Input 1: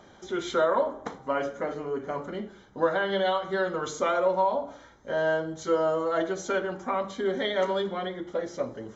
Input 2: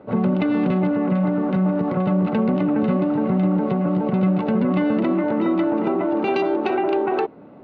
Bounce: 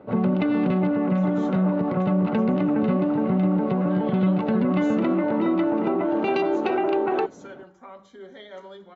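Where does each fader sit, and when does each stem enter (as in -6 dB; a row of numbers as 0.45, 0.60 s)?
-15.0, -2.0 dB; 0.95, 0.00 s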